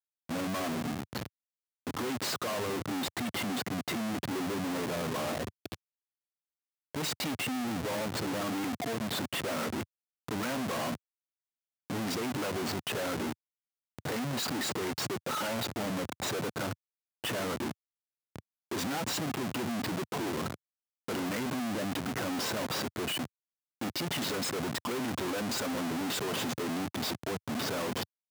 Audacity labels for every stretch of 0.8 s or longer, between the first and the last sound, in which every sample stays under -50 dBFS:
5.750000	6.950000	silence
10.960000	11.900000	silence